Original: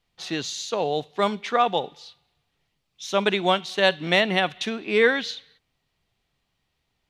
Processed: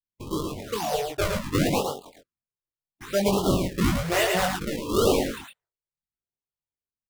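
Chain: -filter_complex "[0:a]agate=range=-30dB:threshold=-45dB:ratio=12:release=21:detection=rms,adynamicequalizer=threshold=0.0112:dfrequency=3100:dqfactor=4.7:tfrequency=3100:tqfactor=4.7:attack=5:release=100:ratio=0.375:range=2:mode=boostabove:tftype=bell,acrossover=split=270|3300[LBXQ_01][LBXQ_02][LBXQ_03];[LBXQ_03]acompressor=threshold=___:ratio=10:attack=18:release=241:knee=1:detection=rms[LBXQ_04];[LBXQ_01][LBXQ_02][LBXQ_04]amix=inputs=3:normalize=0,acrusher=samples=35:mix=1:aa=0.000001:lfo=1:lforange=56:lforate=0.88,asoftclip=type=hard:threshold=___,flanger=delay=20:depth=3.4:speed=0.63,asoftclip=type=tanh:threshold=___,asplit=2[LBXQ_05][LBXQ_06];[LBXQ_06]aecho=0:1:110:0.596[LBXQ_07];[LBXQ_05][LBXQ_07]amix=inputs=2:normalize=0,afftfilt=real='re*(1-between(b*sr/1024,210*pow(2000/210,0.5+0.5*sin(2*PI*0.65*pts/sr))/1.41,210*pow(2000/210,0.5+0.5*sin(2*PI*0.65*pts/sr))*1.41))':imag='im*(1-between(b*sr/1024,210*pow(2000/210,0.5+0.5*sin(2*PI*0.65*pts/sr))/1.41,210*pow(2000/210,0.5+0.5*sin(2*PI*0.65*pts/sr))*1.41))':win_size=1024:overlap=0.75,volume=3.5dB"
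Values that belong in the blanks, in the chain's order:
-41dB, -14.5dB, -17.5dB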